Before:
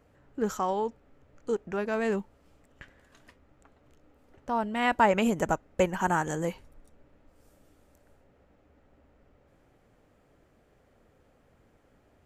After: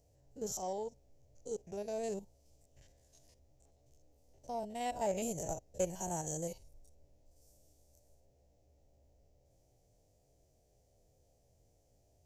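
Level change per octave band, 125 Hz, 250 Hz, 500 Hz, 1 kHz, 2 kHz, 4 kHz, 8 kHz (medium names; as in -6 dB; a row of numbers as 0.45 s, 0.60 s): -9.5 dB, -13.5 dB, -9.0 dB, -13.5 dB, -22.5 dB, -11.0 dB, +2.5 dB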